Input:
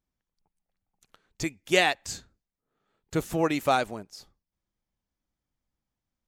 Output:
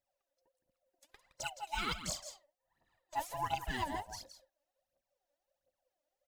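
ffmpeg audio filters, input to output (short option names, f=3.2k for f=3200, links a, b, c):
-af "afftfilt=real='real(if(lt(b,1008),b+24*(1-2*mod(floor(b/24),2)),b),0)':imag='imag(if(lt(b,1008),b+24*(1-2*mod(floor(b/24),2)),b),0)':win_size=2048:overlap=0.75,acrusher=bits=7:mode=log:mix=0:aa=0.000001,areverse,acompressor=threshold=-31dB:ratio=20,areverse,aecho=1:1:166:0.299,aphaser=in_gain=1:out_gain=1:delay=3.6:decay=0.73:speed=1.4:type=triangular,volume=-5dB"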